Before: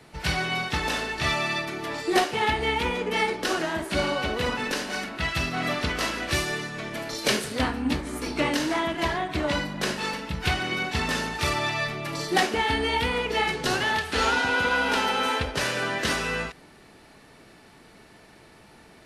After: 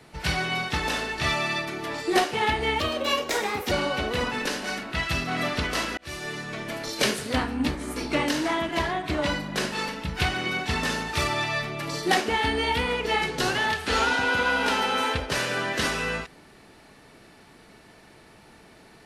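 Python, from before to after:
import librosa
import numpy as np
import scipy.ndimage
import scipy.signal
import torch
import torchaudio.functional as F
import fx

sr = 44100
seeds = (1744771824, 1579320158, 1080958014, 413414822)

y = fx.edit(x, sr, fx.speed_span(start_s=2.8, length_s=1.17, speed=1.28),
    fx.fade_in_span(start_s=6.23, length_s=0.48), tone=tone)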